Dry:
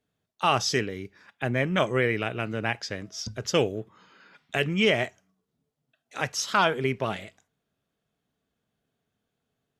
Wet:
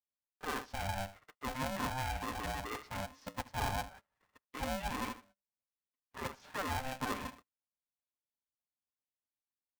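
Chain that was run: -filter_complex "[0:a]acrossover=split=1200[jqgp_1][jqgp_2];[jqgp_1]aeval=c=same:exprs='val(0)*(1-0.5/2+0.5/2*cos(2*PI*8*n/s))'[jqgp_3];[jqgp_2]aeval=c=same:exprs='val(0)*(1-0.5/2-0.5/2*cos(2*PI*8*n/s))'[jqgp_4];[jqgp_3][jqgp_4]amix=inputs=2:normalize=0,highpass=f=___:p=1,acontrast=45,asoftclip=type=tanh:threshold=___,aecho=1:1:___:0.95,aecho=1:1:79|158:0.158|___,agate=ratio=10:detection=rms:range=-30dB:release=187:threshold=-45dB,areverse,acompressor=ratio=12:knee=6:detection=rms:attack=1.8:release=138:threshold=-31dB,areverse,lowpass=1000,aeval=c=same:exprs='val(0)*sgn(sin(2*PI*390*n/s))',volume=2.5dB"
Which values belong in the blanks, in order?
690, -10.5dB, 6.1, 0.0285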